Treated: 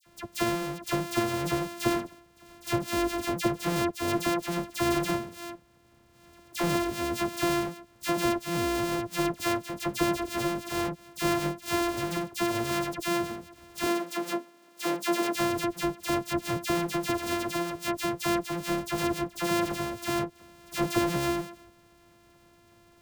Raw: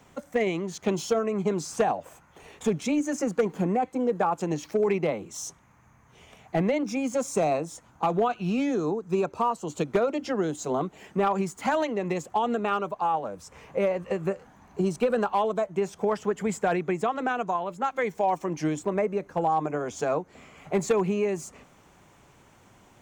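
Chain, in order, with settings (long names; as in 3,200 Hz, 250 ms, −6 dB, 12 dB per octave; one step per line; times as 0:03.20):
samples sorted by size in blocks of 128 samples
0:13.80–0:15.29: high-pass filter 230 Hz 24 dB per octave
all-pass dispersion lows, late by 64 ms, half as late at 1,900 Hz
level −2.5 dB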